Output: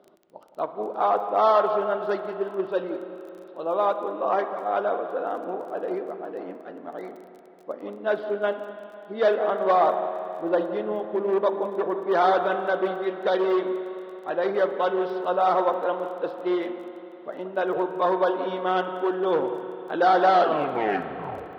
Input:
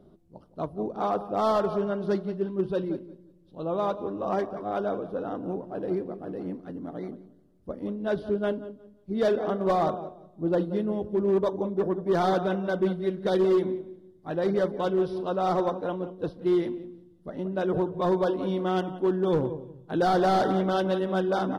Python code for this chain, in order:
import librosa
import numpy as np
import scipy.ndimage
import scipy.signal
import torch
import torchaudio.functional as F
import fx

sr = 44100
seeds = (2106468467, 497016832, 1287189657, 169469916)

y = fx.tape_stop_end(x, sr, length_s=1.26)
y = fx.bandpass_edges(y, sr, low_hz=560.0, high_hz=3000.0)
y = fx.dmg_crackle(y, sr, seeds[0], per_s=18.0, level_db=-48.0)
y = fx.rev_spring(y, sr, rt60_s=3.6, pass_ms=(33, 54), chirp_ms=65, drr_db=8.5)
y = y * 10.0 ** (7.0 / 20.0)